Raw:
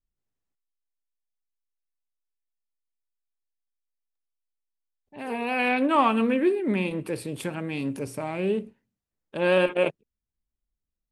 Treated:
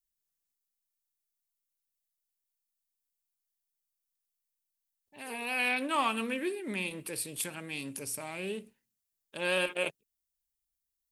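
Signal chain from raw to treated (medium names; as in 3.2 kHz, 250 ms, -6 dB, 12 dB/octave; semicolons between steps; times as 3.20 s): pre-emphasis filter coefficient 0.9; trim +7 dB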